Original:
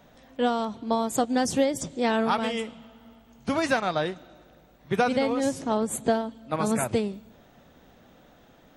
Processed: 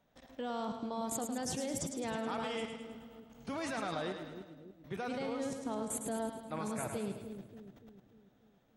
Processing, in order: level quantiser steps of 18 dB; split-band echo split 420 Hz, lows 0.292 s, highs 0.106 s, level -6.5 dB; gain -2 dB

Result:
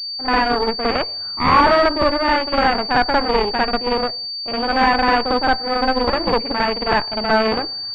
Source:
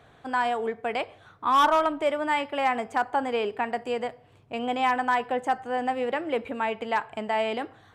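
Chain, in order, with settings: reverse echo 55 ms -4.5 dB; gate with hold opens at -44 dBFS; added harmonics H 6 -9 dB, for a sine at -10.5 dBFS; pulse-width modulation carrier 4600 Hz; gain +5.5 dB

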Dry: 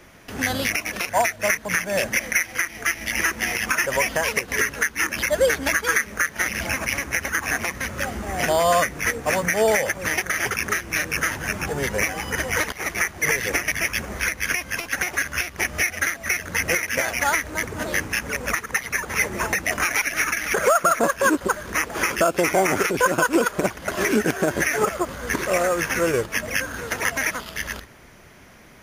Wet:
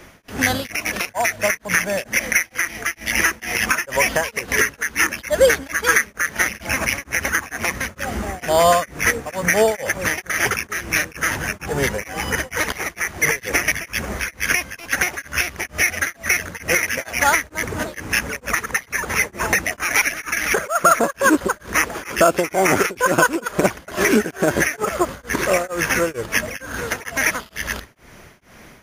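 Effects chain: beating tremolo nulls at 2.2 Hz; gain +5.5 dB

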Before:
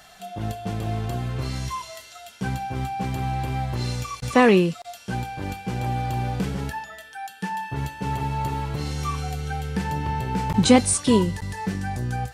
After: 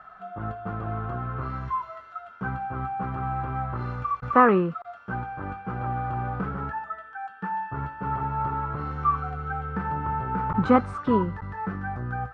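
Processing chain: synth low-pass 1300 Hz, resonance Q 7.9; gain -5 dB

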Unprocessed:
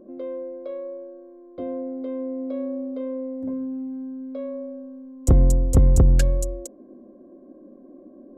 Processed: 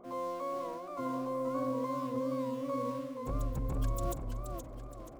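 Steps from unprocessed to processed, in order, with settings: harmoniser -12 st -12 dB, +12 st -1 dB; in parallel at -10 dB: bit-crush 6-bit; on the sum: transient shaper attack -4 dB, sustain +6 dB; time stretch by phase-locked vocoder 0.62×; reverse; compressor 16:1, threshold -22 dBFS, peak gain reduction 16.5 dB; reverse; warbling echo 0.475 s, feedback 41%, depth 130 cents, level -6 dB; gain -8.5 dB

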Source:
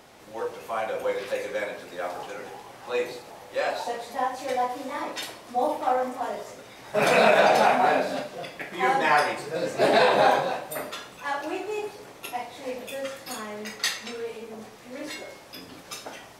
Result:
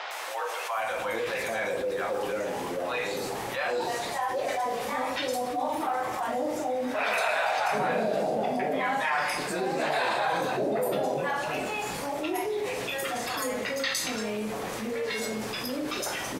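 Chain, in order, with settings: three bands offset in time mids, highs, lows 0.11/0.78 s, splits 640/4600 Hz; fast leveller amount 70%; gain -6 dB

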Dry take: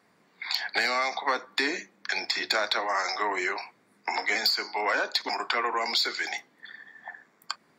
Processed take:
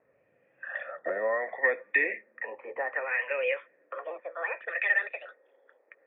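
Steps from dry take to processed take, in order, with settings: speed glide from 59% -> 198%; LFO low-pass sine 0.66 Hz 960–2700 Hz; vocal tract filter e; gain +8 dB

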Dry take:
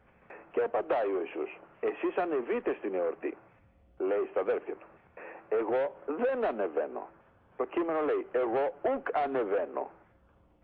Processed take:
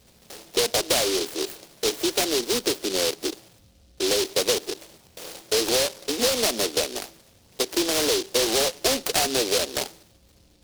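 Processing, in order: noise-modulated delay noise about 4200 Hz, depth 0.26 ms; gain +6.5 dB

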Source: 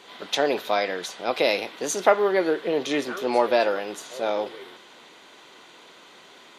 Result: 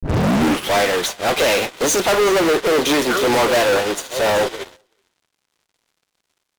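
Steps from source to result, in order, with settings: tape start at the beginning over 0.76 s; dynamic EQ 4600 Hz, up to -3 dB, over -42 dBFS, Q 2.1; fuzz box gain 40 dB, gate -43 dBFS; echo 0.38 s -17 dB; upward expander 2.5:1, over -33 dBFS

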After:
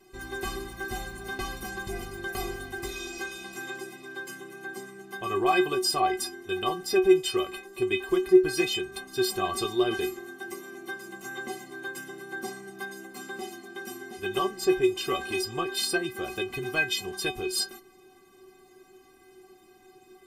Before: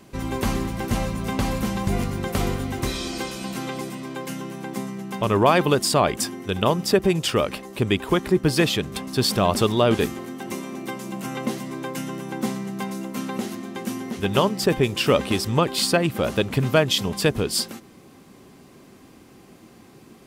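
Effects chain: metallic resonator 370 Hz, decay 0.23 s, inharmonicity 0.008; gain +8 dB

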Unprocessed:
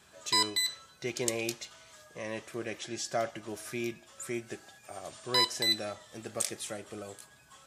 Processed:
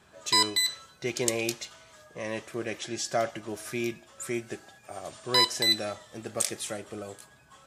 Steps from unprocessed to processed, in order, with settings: mismatched tape noise reduction decoder only; gain +4 dB

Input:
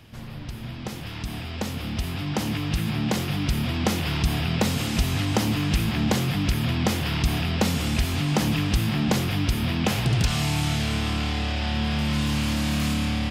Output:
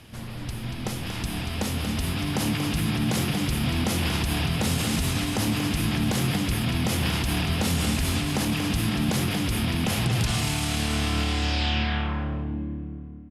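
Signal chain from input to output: ending faded out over 2.31 s; limiter -19 dBFS, peak gain reduction 9 dB; low-pass sweep 11000 Hz -> 330 Hz, 11.28–12.55; notches 50/100/150 Hz; echo 0.234 s -7.5 dB; on a send at -14 dB: reverb RT60 2.7 s, pre-delay 15 ms; on the sum: gain +2 dB

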